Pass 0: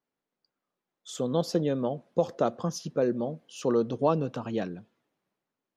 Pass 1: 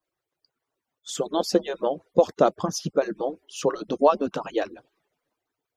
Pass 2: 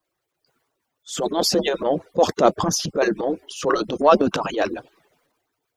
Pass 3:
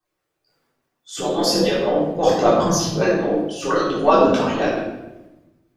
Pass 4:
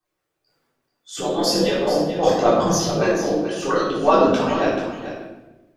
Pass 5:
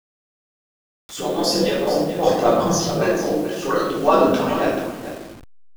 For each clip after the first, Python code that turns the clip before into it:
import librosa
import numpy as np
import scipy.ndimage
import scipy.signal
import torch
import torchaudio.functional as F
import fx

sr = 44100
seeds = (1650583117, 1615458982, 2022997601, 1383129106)

y1 = fx.hpss_only(x, sr, part='percussive')
y1 = y1 * librosa.db_to_amplitude(7.5)
y2 = fx.transient(y1, sr, attack_db=-9, sustain_db=8)
y2 = y2 * librosa.db_to_amplitude(6.0)
y3 = fx.room_shoebox(y2, sr, seeds[0], volume_m3=400.0, walls='mixed', distance_m=3.6)
y3 = y3 * librosa.db_to_amplitude(-7.5)
y4 = y3 + 10.0 ** (-10.5 / 20.0) * np.pad(y3, (int(435 * sr / 1000.0), 0))[:len(y3)]
y4 = y4 * librosa.db_to_amplitude(-1.0)
y5 = fx.delta_hold(y4, sr, step_db=-34.5)